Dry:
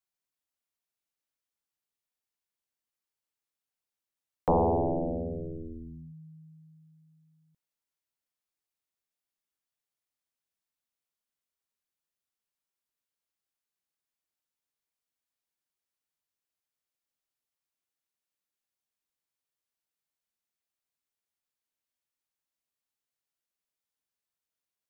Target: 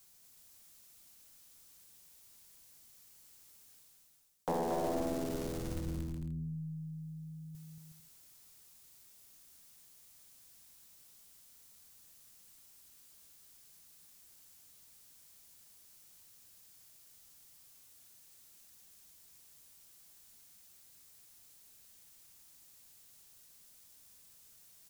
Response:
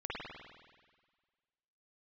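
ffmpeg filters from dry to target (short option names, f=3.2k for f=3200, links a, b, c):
-filter_complex "[0:a]acrossover=split=200[a][b];[a]aeval=exprs='(mod(79.4*val(0)+1,2)-1)/79.4':c=same[c];[c][b]amix=inputs=2:normalize=0,acompressor=threshold=-55dB:ratio=1.5,bass=f=250:g=9,treble=f=4k:g=10,aeval=exprs='0.0631*(cos(1*acos(clip(val(0)/0.0631,-1,1)))-cos(1*PI/2))+0.00562*(cos(4*acos(clip(val(0)/0.0631,-1,1)))-cos(4*PI/2))':c=same,areverse,acompressor=mode=upward:threshold=-47dB:ratio=2.5,areverse,aecho=1:1:230|368|450.8|500.5|530.3:0.631|0.398|0.251|0.158|0.1,volume=1dB"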